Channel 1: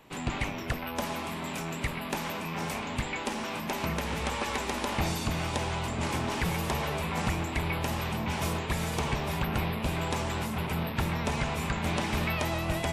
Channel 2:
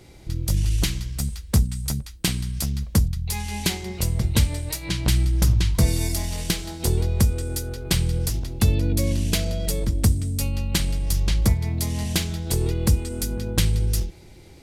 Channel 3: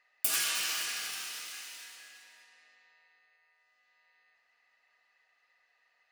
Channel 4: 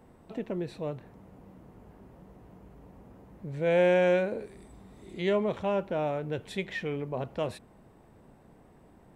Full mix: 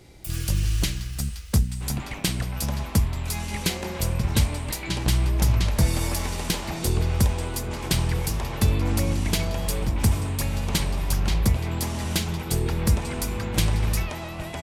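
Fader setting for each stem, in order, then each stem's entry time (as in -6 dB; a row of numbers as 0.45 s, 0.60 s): -3.5 dB, -2.0 dB, -8.5 dB, -17.0 dB; 1.70 s, 0.00 s, 0.00 s, 0.00 s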